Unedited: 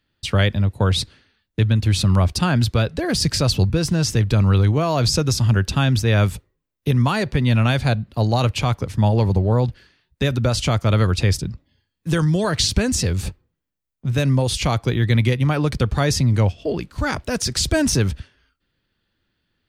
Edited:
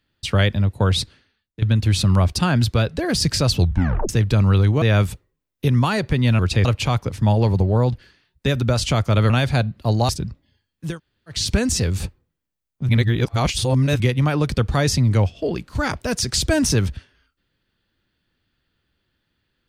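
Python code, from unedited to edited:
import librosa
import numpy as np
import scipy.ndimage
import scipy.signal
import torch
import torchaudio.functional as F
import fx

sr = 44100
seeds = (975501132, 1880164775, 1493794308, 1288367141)

y = fx.edit(x, sr, fx.fade_out_to(start_s=0.98, length_s=0.64, floor_db=-15.0),
    fx.tape_stop(start_s=3.59, length_s=0.5),
    fx.cut(start_s=4.82, length_s=1.23),
    fx.swap(start_s=7.62, length_s=0.79, other_s=11.06, other_length_s=0.26),
    fx.room_tone_fill(start_s=12.11, length_s=0.5, crossfade_s=0.24),
    fx.reverse_span(start_s=14.12, length_s=1.11), tone=tone)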